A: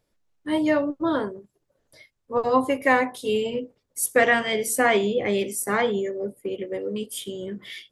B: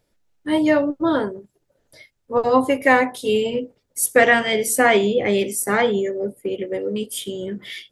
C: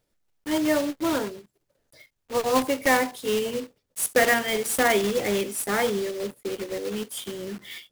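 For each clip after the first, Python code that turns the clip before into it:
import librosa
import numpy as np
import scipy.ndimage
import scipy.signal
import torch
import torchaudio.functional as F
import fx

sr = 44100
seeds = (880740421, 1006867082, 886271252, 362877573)

y1 = fx.notch(x, sr, hz=1100.0, q=9.7)
y1 = y1 * 10.0 ** (4.5 / 20.0)
y2 = fx.block_float(y1, sr, bits=3)
y2 = y2 * 10.0 ** (-6.0 / 20.0)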